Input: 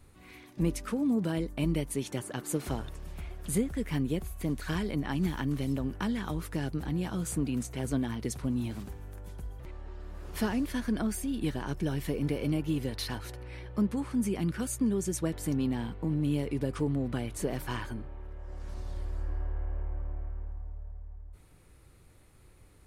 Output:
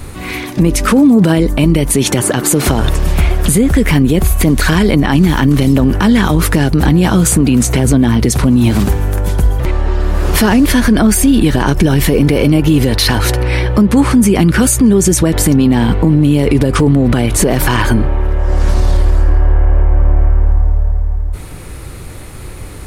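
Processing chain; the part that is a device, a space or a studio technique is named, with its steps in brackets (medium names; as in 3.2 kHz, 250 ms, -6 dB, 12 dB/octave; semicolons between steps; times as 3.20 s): 7.78–8.29 s: bass shelf 340 Hz +4.5 dB; loud club master (compression 3:1, threshold -30 dBFS, peak gain reduction 6.5 dB; hard clipper -21.5 dBFS, distortion -47 dB; loudness maximiser +30.5 dB); trim -1 dB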